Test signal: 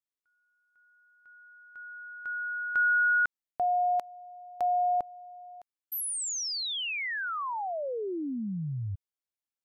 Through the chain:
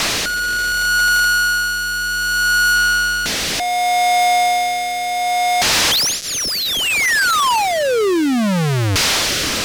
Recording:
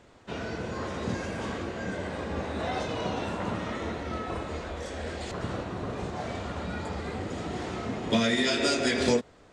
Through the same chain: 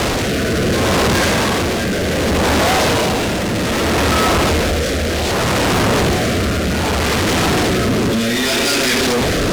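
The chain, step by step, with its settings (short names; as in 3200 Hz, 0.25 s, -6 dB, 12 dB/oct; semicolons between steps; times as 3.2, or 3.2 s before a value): delta modulation 32 kbps, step -22.5 dBFS; fuzz box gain 38 dB, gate -47 dBFS; rotary speaker horn 0.65 Hz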